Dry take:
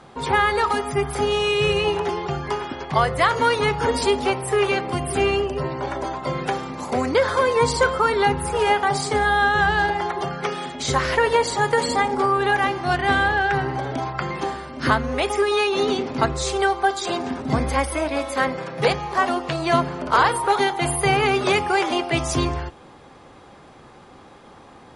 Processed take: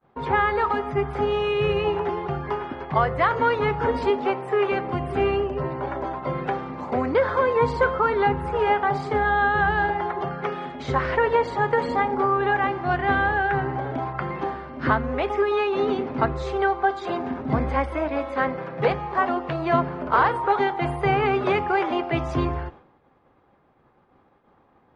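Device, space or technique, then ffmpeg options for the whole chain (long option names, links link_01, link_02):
hearing-loss simulation: -filter_complex "[0:a]lowpass=2000,agate=range=-33dB:threshold=-37dB:ratio=3:detection=peak,asettb=1/sr,asplit=3[link_01][link_02][link_03];[link_01]atrim=end=4.104[link_04];[link_02]atrim=start=4.1:end=4.72,asetpts=PTS-STARTPTS,afade=type=in:duration=0.004:curve=qsin,afade=type=out:start_time=0.616:duration=0.004:curve=qsin,highpass=180[link_05];[link_03]atrim=start=4.716[link_06];[link_04][link_05]acrossfade=duration=0.004:curve1=hsin:curve2=qsin[link_07];[link_07][link_06]acrossfade=duration=0.004:curve1=qsin:curve2=hsin,volume=-1.5dB"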